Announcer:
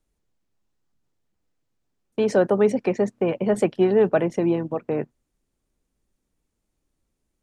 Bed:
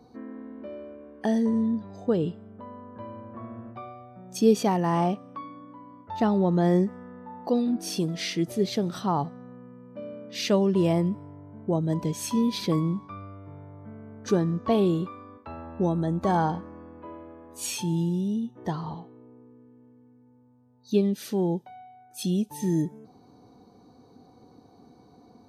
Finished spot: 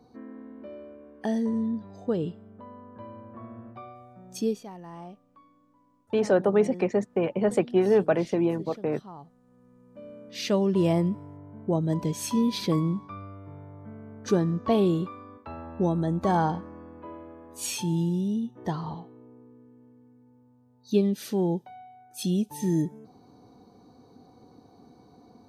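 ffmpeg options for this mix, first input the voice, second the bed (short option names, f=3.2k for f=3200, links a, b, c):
-filter_complex "[0:a]adelay=3950,volume=-3dB[a];[1:a]volume=15.5dB,afade=t=out:st=4.34:d=0.27:silence=0.16788,afade=t=in:st=9.43:d=1.45:silence=0.11885[b];[a][b]amix=inputs=2:normalize=0"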